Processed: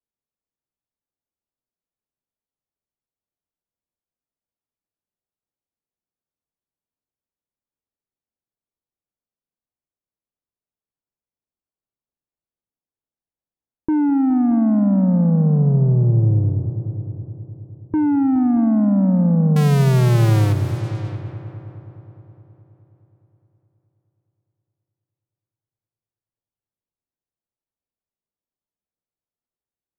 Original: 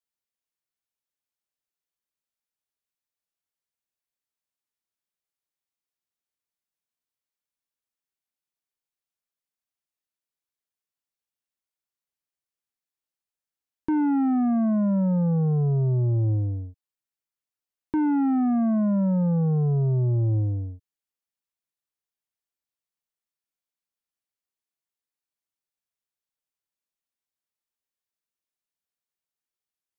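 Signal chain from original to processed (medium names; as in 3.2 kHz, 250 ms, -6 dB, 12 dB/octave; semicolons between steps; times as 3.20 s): 19.56–20.53 s: square wave that keeps the level; bass shelf 480 Hz +7 dB; multi-head delay 209 ms, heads all three, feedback 48%, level -15 dB; level-controlled noise filter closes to 960 Hz, open at -16.5 dBFS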